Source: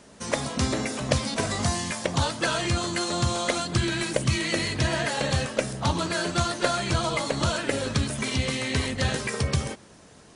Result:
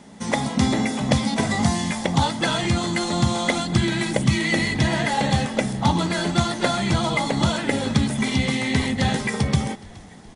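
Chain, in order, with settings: small resonant body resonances 200/810/2000/3400 Hz, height 11 dB, ringing for 25 ms; frequency-shifting echo 420 ms, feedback 50%, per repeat -40 Hz, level -22.5 dB

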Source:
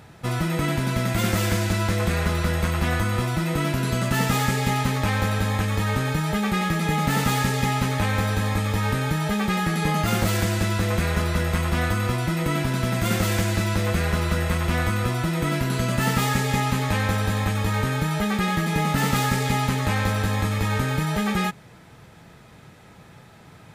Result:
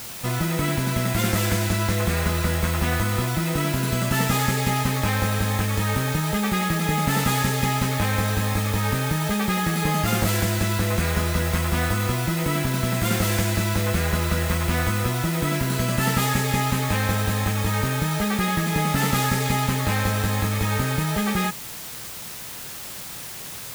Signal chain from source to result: treble shelf 9.9 kHz +5 dB; word length cut 6-bit, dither triangular

